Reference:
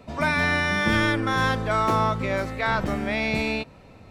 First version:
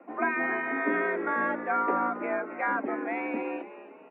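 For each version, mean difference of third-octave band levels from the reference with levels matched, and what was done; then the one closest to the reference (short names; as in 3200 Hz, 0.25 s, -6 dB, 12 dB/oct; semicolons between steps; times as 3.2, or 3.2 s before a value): 13.5 dB: reverb removal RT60 0.67 s; air absorption 110 m; frequency-shifting echo 0.271 s, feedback 46%, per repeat +59 Hz, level -14 dB; mistuned SSB +77 Hz 160–2100 Hz; gain -2.5 dB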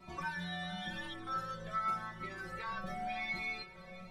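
6.5 dB: compressor 10:1, threshold -31 dBFS, peak gain reduction 14 dB; metallic resonator 180 Hz, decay 0.32 s, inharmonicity 0.002; on a send: multi-head echo 0.223 s, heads second and third, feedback 63%, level -20 dB; on the sum: cascading flanger rising 0.89 Hz; gain +11.5 dB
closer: second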